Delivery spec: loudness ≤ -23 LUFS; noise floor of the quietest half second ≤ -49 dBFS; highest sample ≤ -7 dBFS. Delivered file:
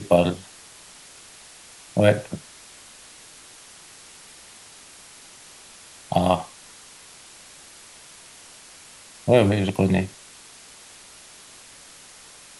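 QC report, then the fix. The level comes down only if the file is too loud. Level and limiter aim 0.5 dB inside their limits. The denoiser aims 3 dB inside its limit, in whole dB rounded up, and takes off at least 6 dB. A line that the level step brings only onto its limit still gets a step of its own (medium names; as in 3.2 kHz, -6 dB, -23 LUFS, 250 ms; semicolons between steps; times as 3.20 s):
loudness -22.0 LUFS: fail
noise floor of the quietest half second -47 dBFS: fail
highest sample -4.0 dBFS: fail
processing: noise reduction 6 dB, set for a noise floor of -47 dBFS; trim -1.5 dB; peak limiter -7.5 dBFS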